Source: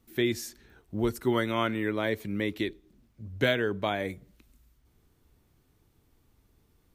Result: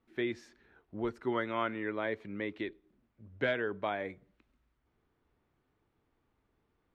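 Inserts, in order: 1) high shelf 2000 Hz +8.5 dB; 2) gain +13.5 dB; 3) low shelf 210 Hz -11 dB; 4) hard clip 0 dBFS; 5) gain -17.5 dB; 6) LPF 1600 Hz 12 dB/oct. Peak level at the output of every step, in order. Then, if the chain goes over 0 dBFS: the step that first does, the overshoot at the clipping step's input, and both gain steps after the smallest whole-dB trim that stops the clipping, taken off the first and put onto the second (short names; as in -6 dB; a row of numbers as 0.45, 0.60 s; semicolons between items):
-8.0, +5.5, +5.5, 0.0, -17.5, -19.0 dBFS; step 2, 5.5 dB; step 2 +7.5 dB, step 5 -11.5 dB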